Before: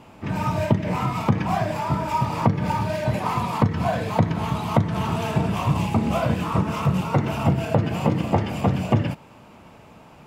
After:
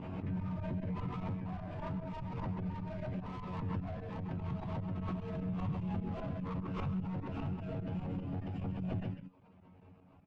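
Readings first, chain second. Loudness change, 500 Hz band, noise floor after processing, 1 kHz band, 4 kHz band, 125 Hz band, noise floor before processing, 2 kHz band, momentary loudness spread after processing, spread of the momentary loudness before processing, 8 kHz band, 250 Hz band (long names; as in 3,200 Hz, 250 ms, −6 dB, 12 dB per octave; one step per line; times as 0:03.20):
−16.0 dB, −19.0 dB, −61 dBFS, −21.5 dB, −23.0 dB, −15.5 dB, −48 dBFS, −21.0 dB, 4 LU, 3 LU, below −30 dB, −14.5 dB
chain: low-pass filter 2,700 Hz 12 dB per octave
tuned comb filter 92 Hz, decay 0.32 s, harmonics all, mix 90%
reverb reduction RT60 0.61 s
brickwall limiter −26.5 dBFS, peak gain reduction 9.5 dB
single-tap delay 131 ms −5 dB
fake sidechain pumping 150 BPM, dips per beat 2, −15 dB, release 98 ms
low-shelf EQ 210 Hz −10.5 dB
tube saturation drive 36 dB, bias 0.45
drawn EQ curve 150 Hz 0 dB, 290 Hz −9 dB, 970 Hz −19 dB
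background raised ahead of every attack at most 29 dB per second
level +9.5 dB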